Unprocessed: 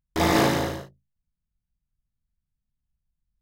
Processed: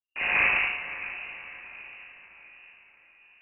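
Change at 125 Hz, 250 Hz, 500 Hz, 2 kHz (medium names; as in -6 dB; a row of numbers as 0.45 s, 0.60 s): under -20 dB, -23.5 dB, -16.5 dB, +7.5 dB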